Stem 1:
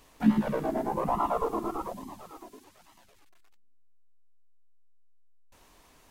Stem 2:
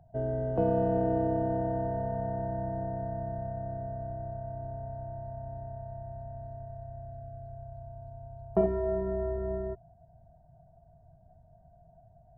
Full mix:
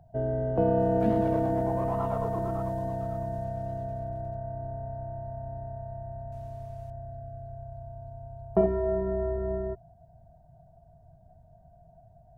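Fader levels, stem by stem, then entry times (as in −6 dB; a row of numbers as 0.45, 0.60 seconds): −8.0, +2.5 decibels; 0.80, 0.00 seconds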